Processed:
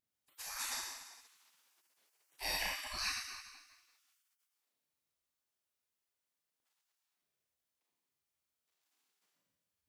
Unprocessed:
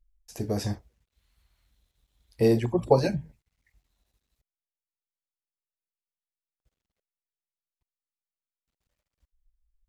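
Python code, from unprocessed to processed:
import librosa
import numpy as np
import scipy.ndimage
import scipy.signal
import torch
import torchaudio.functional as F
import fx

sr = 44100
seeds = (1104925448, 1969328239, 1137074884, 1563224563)

y = fx.rev_schroeder(x, sr, rt60_s=1.3, comb_ms=26, drr_db=-5.5)
y = fx.spec_gate(y, sr, threshold_db=-30, keep='weak')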